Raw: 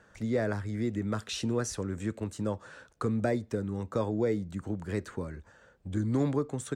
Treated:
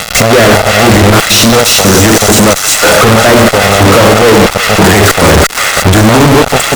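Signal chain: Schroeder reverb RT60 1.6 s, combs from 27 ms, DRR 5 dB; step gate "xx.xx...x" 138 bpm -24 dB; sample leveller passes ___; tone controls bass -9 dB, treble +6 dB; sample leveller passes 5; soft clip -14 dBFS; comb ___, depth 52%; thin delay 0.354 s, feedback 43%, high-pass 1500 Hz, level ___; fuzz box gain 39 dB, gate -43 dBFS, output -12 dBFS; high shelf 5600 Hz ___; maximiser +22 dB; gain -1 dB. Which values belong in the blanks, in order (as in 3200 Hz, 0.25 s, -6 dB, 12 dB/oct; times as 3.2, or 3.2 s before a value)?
5, 1.5 ms, -14 dB, -3.5 dB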